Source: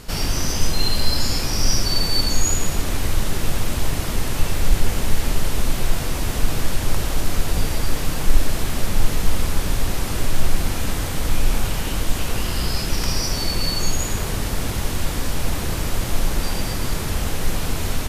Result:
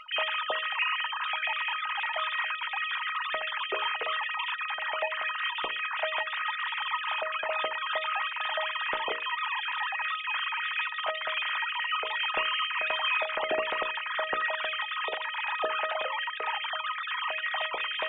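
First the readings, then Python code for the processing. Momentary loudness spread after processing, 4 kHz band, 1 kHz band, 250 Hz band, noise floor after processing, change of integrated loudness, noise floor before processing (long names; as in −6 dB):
3 LU, −5.5 dB, +1.5 dB, −26.5 dB, −37 dBFS, −5.5 dB, −25 dBFS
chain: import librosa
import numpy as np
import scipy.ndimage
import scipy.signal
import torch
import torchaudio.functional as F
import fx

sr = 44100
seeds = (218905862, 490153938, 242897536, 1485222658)

y = fx.sine_speech(x, sr)
y = fx.hum_notches(y, sr, base_hz=60, count=9)
y = fx.comb_fb(y, sr, f0_hz=630.0, decay_s=0.36, harmonics='all', damping=0.0, mix_pct=90)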